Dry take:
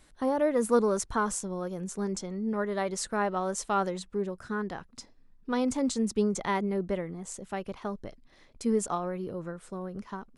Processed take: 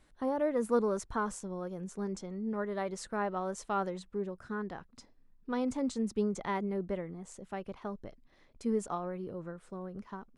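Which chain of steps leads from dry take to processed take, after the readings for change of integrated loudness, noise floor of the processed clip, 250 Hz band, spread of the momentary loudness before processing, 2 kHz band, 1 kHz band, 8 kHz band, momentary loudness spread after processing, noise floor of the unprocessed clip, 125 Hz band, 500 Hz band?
-5.0 dB, -64 dBFS, -4.5 dB, 12 LU, -6.0 dB, -5.0 dB, -11.0 dB, 12 LU, -59 dBFS, -4.5 dB, -4.5 dB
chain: high shelf 3700 Hz -8 dB; gain -4.5 dB

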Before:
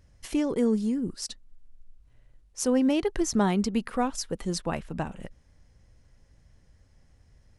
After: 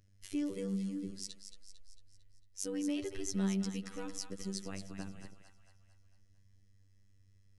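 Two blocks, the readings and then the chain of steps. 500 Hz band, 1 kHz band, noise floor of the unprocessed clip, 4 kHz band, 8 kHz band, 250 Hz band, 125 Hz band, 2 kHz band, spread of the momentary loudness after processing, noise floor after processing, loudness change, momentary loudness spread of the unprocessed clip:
-14.5 dB, -21.0 dB, -61 dBFS, -8.5 dB, -8.0 dB, -10.5 dB, -7.0 dB, -12.0 dB, 16 LU, -64 dBFS, -11.0 dB, 13 LU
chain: bell 850 Hz -13.5 dB 1.4 oct; robotiser 97.1 Hz; split-band echo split 720 Hz, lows 81 ms, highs 0.225 s, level -8.5 dB; gain -6.5 dB

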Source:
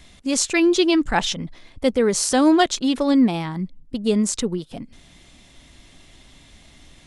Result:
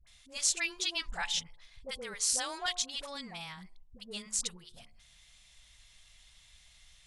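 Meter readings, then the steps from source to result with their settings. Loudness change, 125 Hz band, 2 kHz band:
-13.5 dB, -23.5 dB, -10.5 dB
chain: passive tone stack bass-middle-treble 10-0-10; de-hum 71.54 Hz, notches 15; dispersion highs, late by 71 ms, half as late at 770 Hz; gain -6 dB

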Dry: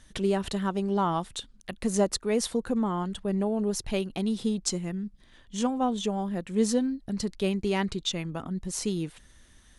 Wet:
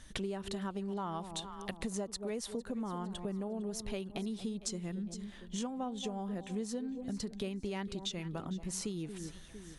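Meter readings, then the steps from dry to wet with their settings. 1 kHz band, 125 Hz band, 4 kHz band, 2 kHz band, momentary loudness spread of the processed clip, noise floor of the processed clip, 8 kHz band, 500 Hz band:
-11.0 dB, -8.5 dB, -8.5 dB, -9.0 dB, 3 LU, -52 dBFS, -8.5 dB, -11.0 dB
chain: on a send: echo with dull and thin repeats by turns 0.228 s, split 910 Hz, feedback 57%, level -13 dB; on the sum: compressor 6:1, threshold -37 dBFS, peak gain reduction 17.5 dB; gain +1 dB

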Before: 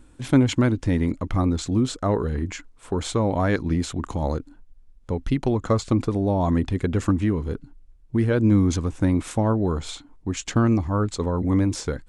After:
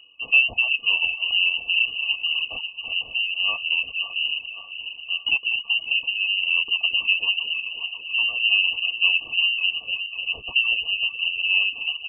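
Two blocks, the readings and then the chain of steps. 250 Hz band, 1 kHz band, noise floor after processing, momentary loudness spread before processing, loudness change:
under -35 dB, -14.5 dB, -41 dBFS, 10 LU, +2.5 dB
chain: regenerating reverse delay 0.272 s, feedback 72%, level -8.5 dB; reverb removal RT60 0.66 s; dynamic EQ 2100 Hz, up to -4 dB, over -43 dBFS, Q 1.3; notch comb 210 Hz; FFT band-reject 320–1700 Hz; on a send: feedback echo 0.575 s, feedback 55%, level -19 dB; on the sum: inverted band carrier 2900 Hz; gain +1 dB

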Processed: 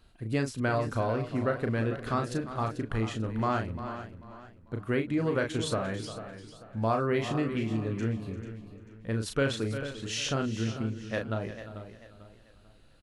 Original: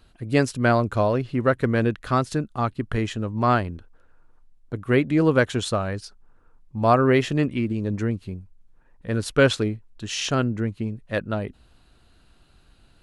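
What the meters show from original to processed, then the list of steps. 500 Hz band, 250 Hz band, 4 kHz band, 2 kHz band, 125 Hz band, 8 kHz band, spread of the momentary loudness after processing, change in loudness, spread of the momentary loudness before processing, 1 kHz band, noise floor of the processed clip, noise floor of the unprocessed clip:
-8.0 dB, -7.5 dB, -6.0 dB, -8.0 dB, -6.5 dB, -5.0 dB, 15 LU, -8.0 dB, 15 LU, -8.5 dB, -57 dBFS, -57 dBFS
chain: doubler 36 ms -5.5 dB; on a send: echo 0.347 s -15.5 dB; on the sum: compressor 2:1, threshold -22 dBFS, peak gain reduction 7 dB; warbling echo 0.443 s, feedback 35%, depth 74 cents, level -12 dB; gain -5.5 dB

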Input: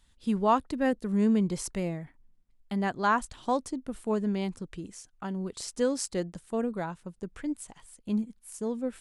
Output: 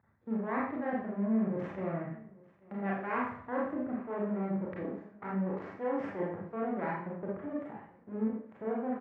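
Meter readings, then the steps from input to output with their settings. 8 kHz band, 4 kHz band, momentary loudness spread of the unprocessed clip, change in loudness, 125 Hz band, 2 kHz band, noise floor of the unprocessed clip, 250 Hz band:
under -40 dB, under -20 dB, 15 LU, -5.0 dB, -4.0 dB, -4.0 dB, -64 dBFS, -4.5 dB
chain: Wiener smoothing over 15 samples; half-wave rectifier; reverse; compressor 10:1, threshold -38 dBFS, peak gain reduction 18 dB; reverse; Chebyshev band-pass 100–2000 Hz, order 3; on a send: echo 0.841 s -23 dB; on the sum: Schroeder reverb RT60 0.55 s, combs from 28 ms, DRR -4.5 dB; gain +6 dB

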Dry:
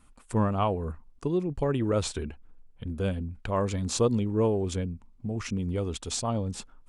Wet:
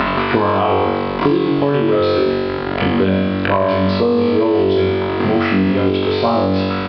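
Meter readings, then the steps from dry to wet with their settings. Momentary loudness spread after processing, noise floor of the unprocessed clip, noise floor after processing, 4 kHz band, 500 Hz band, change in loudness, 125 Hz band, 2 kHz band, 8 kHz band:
3 LU, -57 dBFS, -20 dBFS, +14.0 dB, +15.0 dB, +13.5 dB, +8.0 dB, +21.5 dB, under -20 dB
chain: zero-crossing step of -35 dBFS; Bessel high-pass 260 Hz, order 2; comb 3 ms, depth 32%; upward compressor, threshold -32 dBFS; air absorption 250 m; flutter echo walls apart 3.6 m, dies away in 1.2 s; downsampling 11025 Hz; maximiser +17 dB; three-band squash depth 100%; gain -5.5 dB

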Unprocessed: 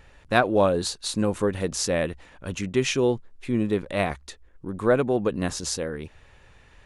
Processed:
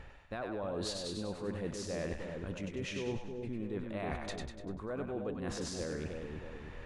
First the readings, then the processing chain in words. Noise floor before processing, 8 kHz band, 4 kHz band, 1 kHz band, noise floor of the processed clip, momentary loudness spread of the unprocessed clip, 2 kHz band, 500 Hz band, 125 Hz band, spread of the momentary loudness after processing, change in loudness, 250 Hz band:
-55 dBFS, -15.0 dB, -12.0 dB, -16.5 dB, -50 dBFS, 14 LU, -15.0 dB, -14.5 dB, -11.0 dB, 6 LU, -14.5 dB, -12.5 dB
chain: LPF 2300 Hz 6 dB/oct; limiter -16.5 dBFS, peak gain reduction 9.5 dB; reverse; compressor 8:1, threshold -40 dBFS, peak gain reduction 18.5 dB; reverse; split-band echo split 630 Hz, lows 0.315 s, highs 98 ms, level -4 dB; gain +3 dB

